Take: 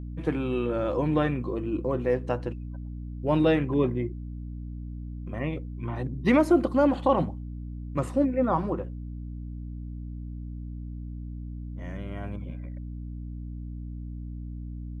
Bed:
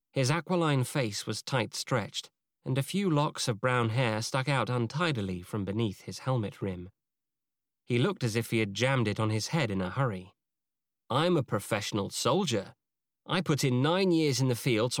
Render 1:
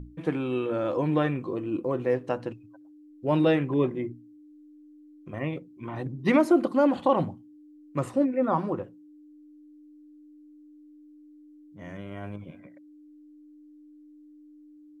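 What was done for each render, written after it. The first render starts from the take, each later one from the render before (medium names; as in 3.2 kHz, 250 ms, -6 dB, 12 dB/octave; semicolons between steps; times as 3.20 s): hum notches 60/120/180/240 Hz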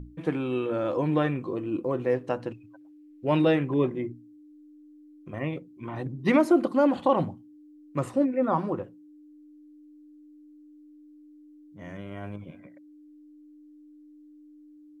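2.54–3.42 s: peaking EQ 2.3 kHz +7.5 dB 1.1 oct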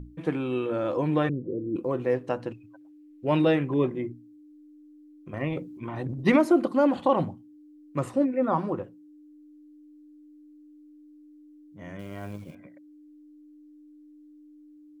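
1.29–1.76 s: steep low-pass 540 Hz 48 dB/octave; 5.33–6.36 s: transient shaper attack +3 dB, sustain +9 dB; 11.99–12.55 s: companded quantiser 6-bit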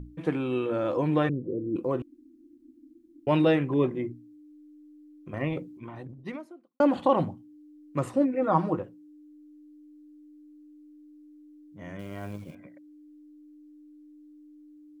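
2.02–3.27 s: room tone; 5.49–6.80 s: fade out quadratic; 8.34–8.77 s: comb 6.4 ms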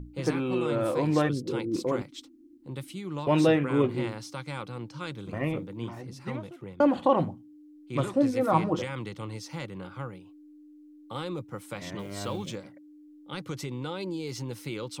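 add bed -8.5 dB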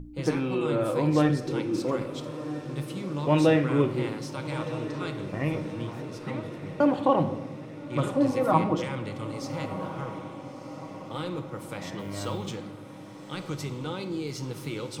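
on a send: echo that smears into a reverb 1311 ms, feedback 55%, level -12 dB; on the sum: simulated room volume 630 m³, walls mixed, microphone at 0.56 m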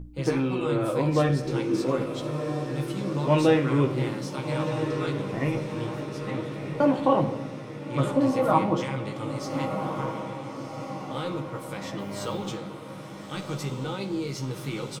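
doubling 15 ms -5 dB; echo that smears into a reverb 1382 ms, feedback 47%, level -9 dB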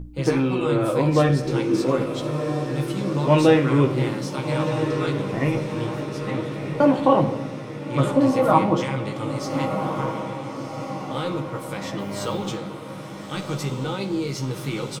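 trim +4.5 dB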